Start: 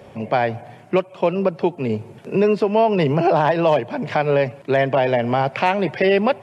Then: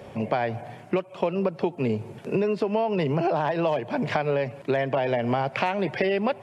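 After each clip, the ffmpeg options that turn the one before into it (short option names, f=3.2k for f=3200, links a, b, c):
-af "acompressor=threshold=-21dB:ratio=6"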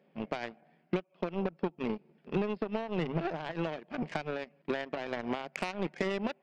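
-af "equalizer=f=500:t=o:w=1:g=-5,equalizer=f=1k:t=o:w=1:g=-8,equalizer=f=4k:t=o:w=1:g=-8,afftfilt=real='re*between(b*sr/4096,140,5300)':imag='im*between(b*sr/4096,140,5300)':win_size=4096:overlap=0.75,aeval=exprs='0.188*(cos(1*acos(clip(val(0)/0.188,-1,1)))-cos(1*PI/2))+0.00376*(cos(3*acos(clip(val(0)/0.188,-1,1)))-cos(3*PI/2))+0.0211*(cos(7*acos(clip(val(0)/0.188,-1,1)))-cos(7*PI/2))':c=same,volume=-3dB"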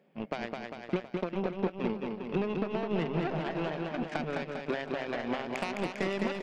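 -af "areverse,acompressor=mode=upward:threshold=-40dB:ratio=2.5,areverse,aecho=1:1:210|399|569.1|722.2|860:0.631|0.398|0.251|0.158|0.1"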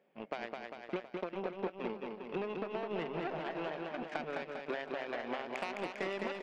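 -af "bass=f=250:g=-12,treble=f=4k:g=-5,volume=-3.5dB"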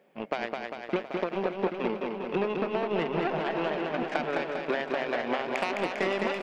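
-af "aecho=1:1:785:0.335,volume=9dB"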